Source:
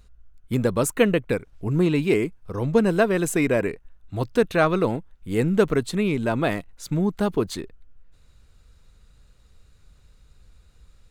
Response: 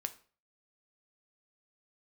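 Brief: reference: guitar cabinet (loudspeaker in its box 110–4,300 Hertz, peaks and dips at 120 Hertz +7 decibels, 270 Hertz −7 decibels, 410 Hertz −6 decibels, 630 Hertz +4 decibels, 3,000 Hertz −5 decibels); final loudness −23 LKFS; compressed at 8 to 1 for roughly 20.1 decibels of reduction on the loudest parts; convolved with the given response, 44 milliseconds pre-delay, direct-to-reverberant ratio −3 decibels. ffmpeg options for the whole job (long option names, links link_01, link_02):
-filter_complex "[0:a]acompressor=threshold=-35dB:ratio=8,asplit=2[link_01][link_02];[1:a]atrim=start_sample=2205,adelay=44[link_03];[link_02][link_03]afir=irnorm=-1:irlink=0,volume=4dB[link_04];[link_01][link_04]amix=inputs=2:normalize=0,highpass=110,equalizer=frequency=120:width_type=q:width=4:gain=7,equalizer=frequency=270:width_type=q:width=4:gain=-7,equalizer=frequency=410:width_type=q:width=4:gain=-6,equalizer=frequency=630:width_type=q:width=4:gain=4,equalizer=frequency=3000:width_type=q:width=4:gain=-5,lowpass=frequency=4300:width=0.5412,lowpass=frequency=4300:width=1.3066,volume=13dB"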